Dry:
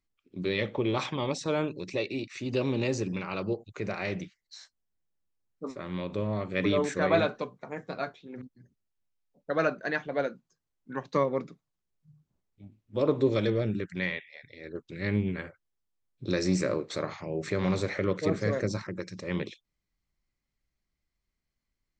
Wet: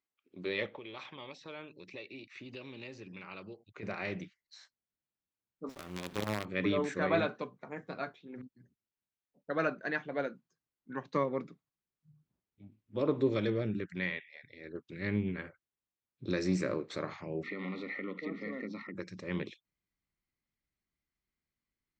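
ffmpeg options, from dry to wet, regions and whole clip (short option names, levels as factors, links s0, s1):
-filter_complex "[0:a]asettb=1/sr,asplit=3[s0][s1][s2];[s0]atrim=end=0.664[s3];[s1]atrim=start=0.66:end=3.83,asetpts=PTS-STARTPTS,afade=t=in:d=0.004:c=qsin,afade=t=out:st=3.166:d=0.004:c=qsin,acrossover=split=2100|5400[s4][s5][s6];[s4]acompressor=threshold=0.00794:ratio=4[s7];[s5]acompressor=threshold=0.00891:ratio=4[s8];[s6]acompressor=threshold=0.00126:ratio=4[s9];[s7][s8][s9]amix=inputs=3:normalize=0,aemphasis=mode=reproduction:type=50fm[s10];[s2]atrim=start=3.826[s11];[s3][s10]acrossfade=d=0.004:c1=hsin:c2=qsin[s12];[s12][s11]acrossfade=d=0.004:c1=qsin:c2=hsin,asettb=1/sr,asplit=3[s13][s14][s15];[s13]atrim=end=5.694[s16];[s14]atrim=start=5.69:end=6.45,asetpts=PTS-STARTPTS,afade=t=in:d=0.004:c=qsin,afade=t=out:st=0.756:d=0.004:c=qsin,aemphasis=mode=production:type=50kf,acrusher=bits=5:dc=4:mix=0:aa=0.000001[s17];[s15]atrim=start=6.446[s18];[s16][s17]acrossfade=d=0.004:c1=hsin:c2=qsin[s19];[s19][s18]acrossfade=d=0.004:c1=qsin:c2=hsin,asettb=1/sr,asplit=3[s20][s21][s22];[s20]atrim=end=17.434[s23];[s21]atrim=start=17.43:end=18.95,asetpts=PTS-STARTPTS,afade=t=in:d=0.004:c=qsin,afade=t=out:st=1.516:d=0.004:c=qsin,asuperstop=centerf=1600:order=12:qfactor=4.3,highpass=f=200:w=0.5412,highpass=f=200:w=1.3066,equalizer=f=250:t=q:w=4:g=10,equalizer=f=370:t=q:w=4:g=-5,equalizer=f=610:t=q:w=4:g=-7,equalizer=f=940:t=q:w=4:g=-5,equalizer=f=1900:t=q:w=4:g=8,lowpass=f=4000:w=0.5412,lowpass=f=4000:w=1.3066,acompressor=threshold=0.0178:ratio=2:attack=3.2:release=140:knee=1:detection=peak[s24];[s22]atrim=start=18.946[s25];[s23][s24]acrossfade=d=0.004:c1=hsin:c2=qsin[s26];[s26][s25]acrossfade=d=0.004:c1=qsin:c2=hsin,asubboost=boost=4.5:cutoff=240,highpass=f=120:p=1,bass=f=250:g=-13,treble=f=4000:g=-8,volume=0.75"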